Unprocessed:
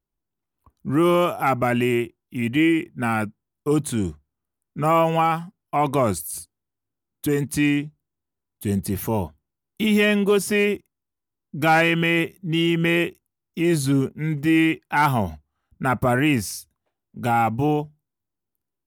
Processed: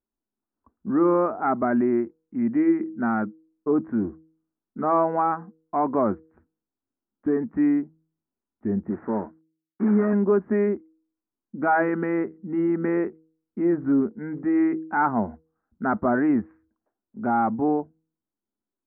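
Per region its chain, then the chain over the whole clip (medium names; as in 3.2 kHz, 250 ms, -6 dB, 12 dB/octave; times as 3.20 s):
8.90–10.13 s: CVSD coder 16 kbps + high-pass 130 Hz
whole clip: steep low-pass 1.7 kHz 48 dB/octave; resonant low shelf 180 Hz -6.5 dB, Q 3; de-hum 159.5 Hz, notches 3; trim -3 dB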